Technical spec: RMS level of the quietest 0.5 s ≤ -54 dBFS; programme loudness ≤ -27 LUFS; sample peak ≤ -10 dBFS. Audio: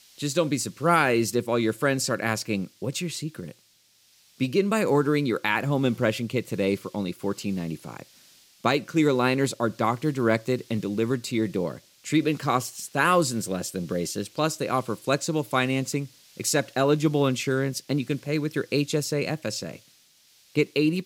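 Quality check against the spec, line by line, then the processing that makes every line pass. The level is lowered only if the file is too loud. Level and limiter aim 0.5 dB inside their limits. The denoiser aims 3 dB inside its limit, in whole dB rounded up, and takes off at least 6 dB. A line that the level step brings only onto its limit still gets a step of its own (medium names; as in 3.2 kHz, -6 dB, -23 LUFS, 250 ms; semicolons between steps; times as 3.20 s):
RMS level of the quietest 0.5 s -61 dBFS: pass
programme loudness -25.5 LUFS: fail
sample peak -7.5 dBFS: fail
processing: trim -2 dB; peak limiter -10.5 dBFS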